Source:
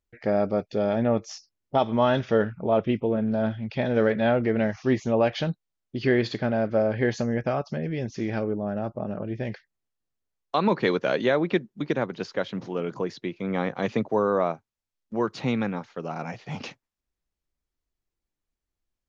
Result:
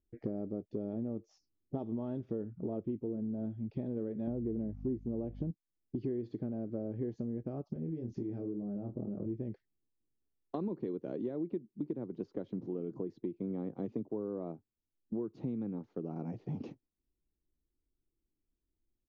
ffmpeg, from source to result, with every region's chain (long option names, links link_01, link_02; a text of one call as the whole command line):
ffmpeg -i in.wav -filter_complex "[0:a]asettb=1/sr,asplit=3[link_01][link_02][link_03];[link_01]atrim=end=4.274[link_04];[link_02]atrim=start=4.27:end=5.51,asetpts=PTS-STARTPTS,afade=type=in:duration=0.004:curve=qsin,afade=type=out:start_time=1.236:duration=0.004:curve=qsin,tiltshelf=frequency=970:gain=6.5,aeval=exprs='val(0)+0.0224*(sin(2*PI*50*n/s)+sin(2*PI*2*50*n/s)/2+sin(2*PI*3*50*n/s)/3+sin(2*PI*4*50*n/s)/4+sin(2*PI*5*50*n/s)/5)':channel_layout=same[link_05];[link_03]atrim=start=5.506[link_06];[link_04][link_05]acrossfade=duration=0.004:curve1=hsin:curve2=qsin[link_07];[link_07][link_06]acrossfade=duration=0.004:curve1=qsin:curve2=hsin,asettb=1/sr,asplit=3[link_08][link_09][link_10];[link_08]atrim=end=7.734[link_11];[link_09]atrim=start=7.73:end=9.26,asetpts=PTS-STARTPTS,afade=type=in:duration=0.004:curve=qsin,afade=type=out:start_time=1.526:duration=0.004:curve=qsin,acompressor=threshold=-32dB:ratio=4:attack=3.2:release=140:knee=1:detection=peak,asplit=2[link_12][link_13];[link_13]adelay=25,volume=-4dB[link_14];[link_12][link_14]amix=inputs=2:normalize=0,atrim=end_sample=67473[link_15];[link_10]atrim=start=9.256[link_16];[link_11][link_15]acrossfade=duration=0.004:curve1=hsin:curve2=qsin[link_17];[link_17][link_16]acrossfade=duration=0.004:curve1=qsin:curve2=hsin,firequalizer=gain_entry='entry(180,0);entry(320,6);entry(560,-9);entry(1600,-24)':delay=0.05:min_phase=1,acompressor=threshold=-36dB:ratio=6,volume=1dB" out.wav